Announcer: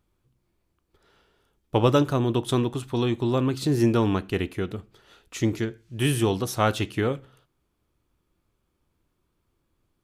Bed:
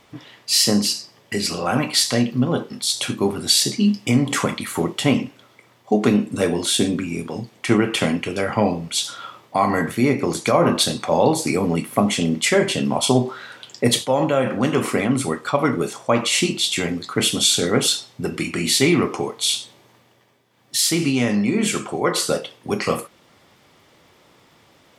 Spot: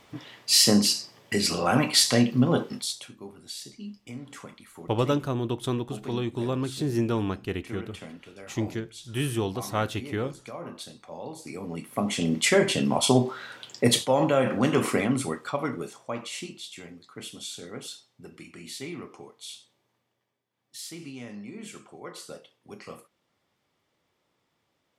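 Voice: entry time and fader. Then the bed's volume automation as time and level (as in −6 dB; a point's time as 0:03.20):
3.15 s, −5.0 dB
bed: 0:02.75 −2 dB
0:03.10 −22.5 dB
0:11.25 −22.5 dB
0:12.38 −3.5 dB
0:14.89 −3.5 dB
0:16.74 −21 dB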